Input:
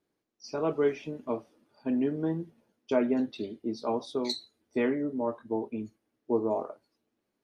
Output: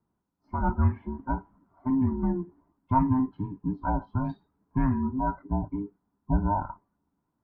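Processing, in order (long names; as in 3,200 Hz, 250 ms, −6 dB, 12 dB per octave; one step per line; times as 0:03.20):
frequency inversion band by band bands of 500 Hz
Chebyshev low-pass filter 1,300 Hz, order 3
level +3.5 dB
Opus 64 kbit/s 48,000 Hz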